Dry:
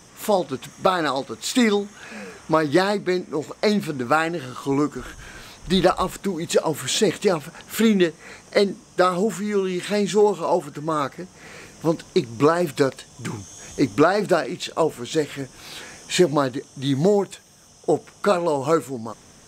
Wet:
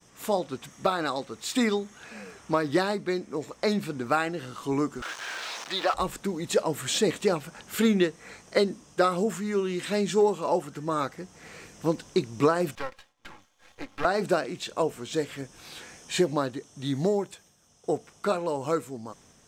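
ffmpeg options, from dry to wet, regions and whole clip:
ffmpeg -i in.wav -filter_complex "[0:a]asettb=1/sr,asplit=3[link_01][link_02][link_03];[link_01]atrim=end=5.024[link_04];[link_02]atrim=start=5.02:end=5.94,asetpts=PTS-STARTPTS,afade=type=in:duration=0.004:curve=qsin,afade=type=out:start_time=0.916:duration=0.004:curve=qsin,aeval=exprs='val(0)+0.5*0.0668*sgn(val(0))':channel_layout=same,highpass=670,lowpass=5400,acrusher=bits=7:mix=0:aa=0.5[link_05];[link_03]atrim=start=5.936[link_06];[link_04][link_05]acrossfade=duration=0.004:curve1=hsin:curve2=qsin[link_07];[link_07][link_06]acrossfade=duration=0.004:curve1=qsin:curve2=hsin,asettb=1/sr,asplit=3[link_08][link_09][link_10];[link_08]atrim=end=12.754[link_11];[link_09]atrim=start=12.75:end=14.05,asetpts=PTS-STARTPTS,afade=type=in:duration=0.004:curve=qsin,afade=type=out:start_time=1.296:duration=0.004:curve=qsin,acrossover=split=580 3500:gain=0.158 1 0.1[link_12][link_13][link_14];[link_12][link_13][link_14]amix=inputs=3:normalize=0,aecho=1:1:3.7:0.6,atrim=end_sample=57330,aeval=exprs='max(val(0),0)':channel_layout=same[link_15];[link_10]atrim=start=14.046[link_16];[link_11][link_15]acrossfade=duration=0.004:curve1=hsin:curve2=qsin[link_17];[link_17][link_16]acrossfade=duration=0.004:curve1=qsin:curve2=hsin,agate=range=-33dB:threshold=-46dB:ratio=3:detection=peak,dynaudnorm=framelen=300:gausssize=31:maxgain=3dB,volume=-6.5dB" out.wav

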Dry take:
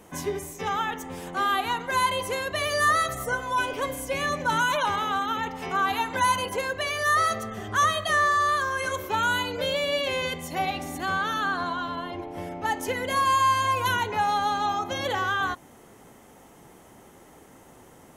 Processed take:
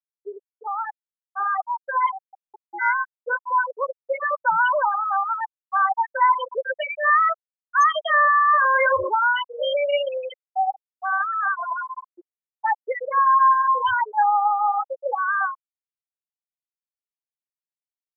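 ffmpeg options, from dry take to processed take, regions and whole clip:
ffmpeg -i in.wav -filter_complex "[0:a]asettb=1/sr,asplit=3[link_01][link_02][link_03];[link_01]atrim=end=2.124[link_04];[link_02]atrim=start=2.12:end=3.11,asetpts=PTS-STARTPTS,afade=type=in:duration=0.004:curve=qsin,afade=type=out:start_time=0.986:duration=0.004:curve=qsin,highpass=490,aeval=exprs='val(0)*sin(2*PI*240*n/s)':channel_layout=same[link_05];[link_03]atrim=start=3.106[link_06];[link_04][link_05]acrossfade=duration=0.004:curve1=hsin:curve2=qsin[link_07];[link_07][link_06]acrossfade=duration=0.004:curve1=qsin:curve2=hsin,asettb=1/sr,asplit=3[link_08][link_09][link_10];[link_08]atrim=end=8.484[link_11];[link_09]atrim=start=8.48:end=9.1,asetpts=PTS-STARTPTS,afade=type=in:duration=0.004:curve=qsin,afade=type=out:start_time=0.616:duration=0.004:curve=qsin,acompressor=threshold=-32dB:ratio=4:attack=3.2:release=140:knee=1:detection=peak,aeval=exprs='0.15*sin(PI/2*3.16*val(0)/0.15)':channel_layout=same[link_12];[link_10]atrim=start=9.096[link_13];[link_11][link_12]acrossfade=duration=0.004:curve1=hsin:curve2=qsin[link_14];[link_14][link_13]acrossfade=duration=0.004:curve1=qsin:curve2=hsin,afftfilt=real='re*gte(hypot(re,im),0.224)':imag='im*gte(hypot(re,im),0.224)':win_size=1024:overlap=0.75,lowshelf=frequency=400:width_type=q:width=1.5:gain=-11.5,dynaudnorm=framelen=360:gausssize=13:maxgain=4.5dB" out.wav

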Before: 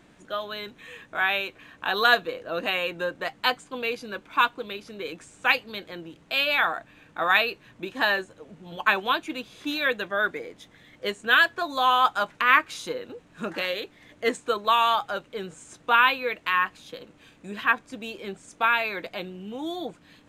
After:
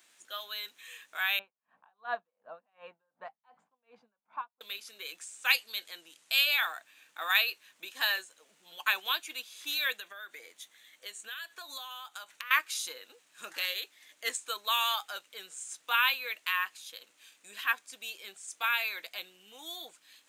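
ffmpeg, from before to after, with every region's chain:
ffmpeg -i in.wav -filter_complex "[0:a]asettb=1/sr,asplit=3[link_01][link_02][link_03];[link_01]atrim=end=1.394[link_04];[link_02]atrim=start=1.39:end=4.61,asetpts=PTS-STARTPTS,afade=type=in:duration=0.004:curve=qsin,afade=type=out:start_time=3.216:duration=0.004:curve=qsin,lowpass=frequency=840:width_type=q:width=2.5,lowshelf=frequency=260:width_type=q:width=3:gain=6.5,aeval=exprs='val(0)*pow(10,-38*(0.5-0.5*cos(2*PI*2.7*n/s))/20)':channel_layout=same[link_05];[link_03]atrim=start=4.606[link_06];[link_04][link_05]acrossfade=duration=0.004:curve1=hsin:curve2=qsin[link_07];[link_07][link_06]acrossfade=duration=0.004:curve1=qsin:curve2=hsin,asettb=1/sr,asplit=3[link_08][link_09][link_10];[link_08]atrim=end=5.514[link_11];[link_09]atrim=start=5.51:end=6.51,asetpts=PTS-STARTPTS,afade=type=in:duration=0.004:curve=qsin,afade=type=out:start_time=0.996:duration=0.004:curve=qsin,lowpass=frequency=12000:width=0.5412,lowpass=frequency=12000:width=1.3066,highshelf=frequency=5800:gain=7[link_12];[link_10]atrim=start=6.506[link_13];[link_11][link_12]acrossfade=duration=0.004:curve1=hsin:curve2=qsin[link_14];[link_14][link_13]acrossfade=duration=0.004:curve1=qsin:curve2=hsin,asettb=1/sr,asplit=3[link_15][link_16][link_17];[link_15]atrim=end=9.994[link_18];[link_16]atrim=start=9.99:end=12.51,asetpts=PTS-STARTPTS,afade=type=in:duration=0.004:curve=qsin,afade=type=out:start_time=2.516:duration=0.004:curve=qsin,acompressor=threshold=-31dB:ratio=12:attack=3.2:release=140:knee=1:detection=peak,bandreject=frequency=5100:width=10[link_19];[link_17]atrim=start=12.506[link_20];[link_18][link_19]acrossfade=duration=0.004:curve1=hsin:curve2=qsin[link_21];[link_21][link_20]acrossfade=duration=0.004:curve1=qsin:curve2=hsin,highpass=frequency=280:poles=1,aderivative,volume=5.5dB" out.wav

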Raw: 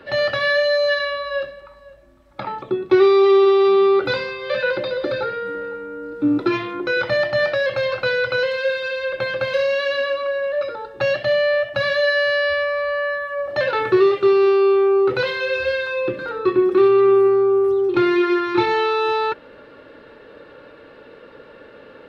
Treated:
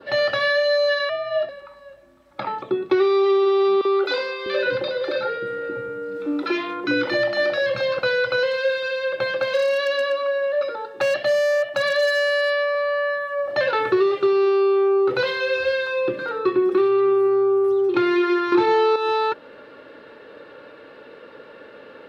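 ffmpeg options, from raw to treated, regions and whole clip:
ffmpeg -i in.wav -filter_complex "[0:a]asettb=1/sr,asplit=3[link_01][link_02][link_03];[link_01]atrim=end=1.094[link_04];[link_02]atrim=start=1.09:end=1.49,asetpts=PTS-STARTPTS,afade=type=in:duration=0.004:curve=qsin,afade=type=out:start_time=0.396:duration=0.004:curve=qsin,highshelf=frequency=3900:gain=-11,aecho=1:1:3.9:0.51,atrim=end_sample=17640,afreqshift=70[link_05];[link_03]atrim=start=1.486[link_06];[link_04][link_05]acrossfade=duration=0.004:curve1=hsin:curve2=qsin[link_07];[link_07][link_06]acrossfade=duration=0.004:curve1=qsin:curve2=hsin,asettb=1/sr,asplit=3[link_08][link_09][link_10];[link_08]atrim=end=3.814[link_11];[link_09]atrim=start=3.81:end=7.99,asetpts=PTS-STARTPTS,afade=type=in:duration=0.004:curve=qsin,afade=type=out:start_time=4.176:duration=0.004:curve=qsin,acompressor=mode=upward:threshold=-22dB:ratio=2.5:attack=3.2:release=140:knee=2.83:detection=peak,acrossover=split=300|1000[link_12][link_13][link_14];[link_13]adelay=40[link_15];[link_12]adelay=650[link_16];[link_16][link_15][link_14]amix=inputs=3:normalize=0,atrim=end_sample=184338[link_17];[link_10]atrim=start=7.986[link_18];[link_11][link_17]acrossfade=duration=0.004:curve1=hsin:curve2=qsin[link_19];[link_19][link_18]acrossfade=duration=0.004:curve1=qsin:curve2=hsin,asettb=1/sr,asplit=3[link_20][link_21][link_22];[link_20]atrim=end=9.324[link_23];[link_21]atrim=start=9.32:end=12.75,asetpts=PTS-STARTPTS,afade=type=in:duration=0.004:curve=qsin,afade=type=out:start_time=3.426:duration=0.004:curve=qsin,highpass=160,asoftclip=type=hard:threshold=-13.5dB[link_24];[link_22]atrim=start=12.746[link_25];[link_23][link_24]acrossfade=duration=0.004:curve1=hsin:curve2=qsin[link_26];[link_26][link_25]acrossfade=duration=0.004:curve1=qsin:curve2=hsin,asettb=1/sr,asplit=3[link_27][link_28][link_29];[link_27]atrim=end=18.524[link_30];[link_28]atrim=start=18.52:end=18.96,asetpts=PTS-STARTPTS,afade=type=in:duration=0.004:curve=qsin,afade=type=out:start_time=0.436:duration=0.004:curve=qsin,equalizer=frequency=410:width=0.47:gain=6.5,acontrast=32[link_31];[link_29]atrim=start=18.956[link_32];[link_30][link_31]acrossfade=duration=0.004:curve1=hsin:curve2=qsin[link_33];[link_33][link_32]acrossfade=duration=0.004:curve1=qsin:curve2=hsin,highpass=frequency=210:poles=1,adynamicequalizer=threshold=0.0178:dfrequency=2200:dqfactor=1.5:tfrequency=2200:tqfactor=1.5:attack=5:release=100:ratio=0.375:range=2:mode=cutabove:tftype=bell,acompressor=threshold=-16dB:ratio=6,volume=1dB" out.wav

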